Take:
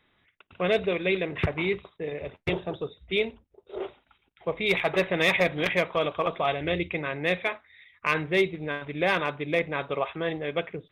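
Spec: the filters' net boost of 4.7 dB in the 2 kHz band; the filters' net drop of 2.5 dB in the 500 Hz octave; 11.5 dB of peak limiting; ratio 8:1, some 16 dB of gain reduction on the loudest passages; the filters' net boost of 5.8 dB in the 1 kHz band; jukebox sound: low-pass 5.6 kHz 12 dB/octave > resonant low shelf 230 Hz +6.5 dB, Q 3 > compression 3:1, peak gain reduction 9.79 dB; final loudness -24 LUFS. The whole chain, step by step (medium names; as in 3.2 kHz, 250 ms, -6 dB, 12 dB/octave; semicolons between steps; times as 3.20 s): peaking EQ 500 Hz -3.5 dB; peaking EQ 1 kHz +8 dB; peaking EQ 2 kHz +4 dB; compression 8:1, threshold -33 dBFS; peak limiter -28 dBFS; low-pass 5.6 kHz 12 dB/octave; resonant low shelf 230 Hz +6.5 dB, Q 3; compression 3:1, threshold -43 dBFS; trim +21 dB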